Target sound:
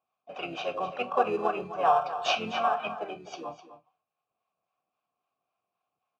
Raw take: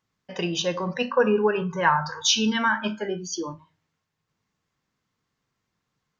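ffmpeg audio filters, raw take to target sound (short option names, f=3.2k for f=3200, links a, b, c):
-filter_complex "[0:a]acrossover=split=830[a][b];[a]aeval=exprs='val(0)*(1-0.5/2+0.5/2*cos(2*PI*3.7*n/s))':c=same[c];[b]aeval=exprs='val(0)*(1-0.5/2-0.5/2*cos(2*PI*3.7*n/s))':c=same[d];[c][d]amix=inputs=2:normalize=0,asplit=2[e][f];[f]acrusher=samples=20:mix=1:aa=0.000001,volume=-10dB[g];[e][g]amix=inputs=2:normalize=0,asplit=4[h][i][j][k];[i]asetrate=22050,aresample=44100,atempo=2,volume=-9dB[l];[j]asetrate=35002,aresample=44100,atempo=1.25992,volume=-6dB[m];[k]asetrate=52444,aresample=44100,atempo=0.840896,volume=-15dB[n];[h][l][m][n]amix=inputs=4:normalize=0,asplit=3[o][p][q];[o]bandpass=f=730:t=q:w=8,volume=0dB[r];[p]bandpass=f=1.09k:t=q:w=8,volume=-6dB[s];[q]bandpass=f=2.44k:t=q:w=8,volume=-9dB[t];[r][s][t]amix=inputs=3:normalize=0,aecho=1:1:254:0.224,volume=7.5dB"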